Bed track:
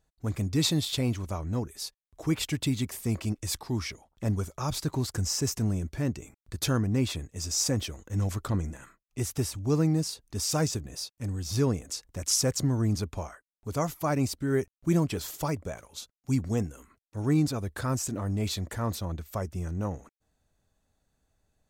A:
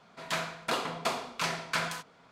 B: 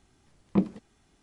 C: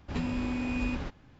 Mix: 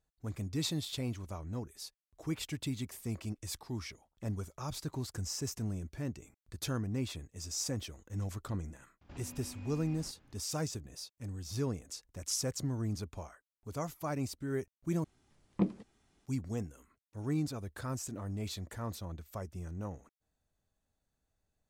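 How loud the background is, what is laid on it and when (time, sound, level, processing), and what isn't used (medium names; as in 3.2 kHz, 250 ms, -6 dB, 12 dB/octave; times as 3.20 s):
bed track -9 dB
9.01 s: add C -8 dB + compression 10:1, threshold -38 dBFS
15.04 s: replace with B -6 dB
not used: A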